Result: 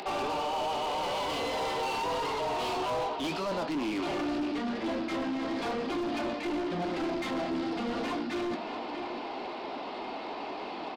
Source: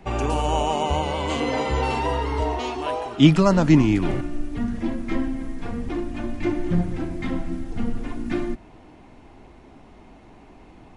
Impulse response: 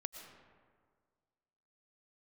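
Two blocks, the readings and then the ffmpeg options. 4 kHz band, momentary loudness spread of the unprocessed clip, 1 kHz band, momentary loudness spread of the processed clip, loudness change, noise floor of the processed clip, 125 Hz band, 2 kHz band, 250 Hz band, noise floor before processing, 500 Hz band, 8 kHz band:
-3.5 dB, 14 LU, -4.0 dB, 7 LU, -9.0 dB, -39 dBFS, -21.5 dB, -4.0 dB, -10.0 dB, -48 dBFS, -5.5 dB, -6.5 dB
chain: -filter_complex "[0:a]asplit=2[a][b];[b]aeval=exprs='(mod(1.58*val(0)+1,2)-1)/1.58':c=same,volume=-4dB[c];[a][c]amix=inputs=2:normalize=0,highpass=f=180:w=0.5412,highpass=f=180:w=1.3066,aresample=11025,aresample=44100,areverse,acompressor=threshold=-27dB:ratio=12,areverse,aecho=1:1:631:0.178,flanger=delay=4.8:depth=9.7:regen=-62:speed=0.84:shape=sinusoidal,bass=f=250:g=-9,treble=f=4k:g=10,asplit=2[d][e];[e]highpass=f=720:p=1,volume=26dB,asoftclip=type=tanh:threshold=-23.5dB[f];[d][f]amix=inputs=2:normalize=0,lowpass=f=2.7k:p=1,volume=-6dB,acompressor=mode=upward:threshold=-40dB:ratio=2.5,equalizer=f=1.8k:w=1.5:g=-6.5,asplit=2[g][h];[h]adelay=24,volume=-13dB[i];[g][i]amix=inputs=2:normalize=0,asoftclip=type=hard:threshold=-27.5dB"

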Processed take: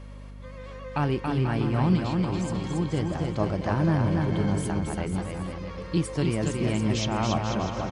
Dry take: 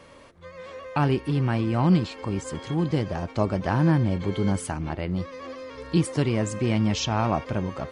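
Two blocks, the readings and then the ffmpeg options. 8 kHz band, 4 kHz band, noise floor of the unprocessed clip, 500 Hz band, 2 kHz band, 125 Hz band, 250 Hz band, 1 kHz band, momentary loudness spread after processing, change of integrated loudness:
-1.5 dB, -1.5 dB, -48 dBFS, -1.5 dB, -1.5 dB, -1.0 dB, -1.5 dB, -1.5 dB, 11 LU, -1.5 dB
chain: -af "aecho=1:1:280|490|647.5|765.6|854.2:0.631|0.398|0.251|0.158|0.1,aeval=exprs='val(0)+0.0141*(sin(2*PI*50*n/s)+sin(2*PI*2*50*n/s)/2+sin(2*PI*3*50*n/s)/3+sin(2*PI*4*50*n/s)/4+sin(2*PI*5*50*n/s)/5)':c=same,volume=-3.5dB"

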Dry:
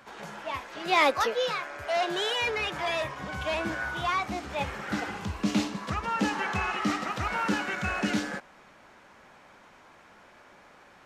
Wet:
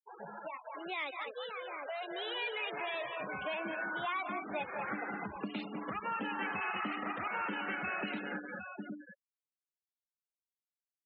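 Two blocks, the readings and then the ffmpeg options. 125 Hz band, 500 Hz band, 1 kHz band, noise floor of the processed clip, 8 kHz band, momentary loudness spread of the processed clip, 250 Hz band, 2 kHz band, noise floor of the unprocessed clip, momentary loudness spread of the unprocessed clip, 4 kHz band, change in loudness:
-15.0 dB, -10.0 dB, -8.5 dB, under -85 dBFS, under -35 dB, 9 LU, -10.5 dB, -7.0 dB, -55 dBFS, 8 LU, -10.5 dB, -9.0 dB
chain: -filter_complex "[0:a]aecho=1:1:178|204|756:0.178|0.398|0.178,afftdn=nr=23:nf=-39,highshelf=f=3.6k:g=-2.5,aresample=32000,aresample=44100,acrossover=split=2900[a][b];[a]acompressor=threshold=-40dB:ratio=16[c];[c][b]amix=inputs=2:normalize=0,acrossover=split=180 2700:gain=0.1 1 0.1[d][e][f];[d][e][f]amix=inputs=3:normalize=0,dynaudnorm=f=500:g=11:m=6dB,afftfilt=real='re*gte(hypot(re,im),0.00891)':imag='im*gte(hypot(re,im),0.00891)':win_size=1024:overlap=0.75"

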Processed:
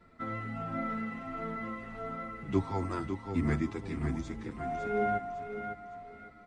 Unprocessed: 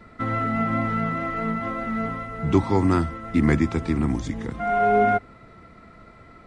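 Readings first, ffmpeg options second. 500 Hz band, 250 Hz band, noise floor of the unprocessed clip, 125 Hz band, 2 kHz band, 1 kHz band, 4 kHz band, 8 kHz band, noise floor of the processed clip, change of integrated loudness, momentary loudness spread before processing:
-10.5 dB, -11.5 dB, -49 dBFS, -11.0 dB, -11.0 dB, -12.0 dB, -11.0 dB, n/a, -54 dBFS, -12.0 dB, 8 LU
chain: -filter_complex "[0:a]asplit=2[a][b];[b]aecho=0:1:555|1110|1665|2220:0.447|0.165|0.0612|0.0226[c];[a][c]amix=inputs=2:normalize=0,asplit=2[d][e];[e]adelay=8.3,afreqshift=-1.5[f];[d][f]amix=inputs=2:normalize=1,volume=-9dB"

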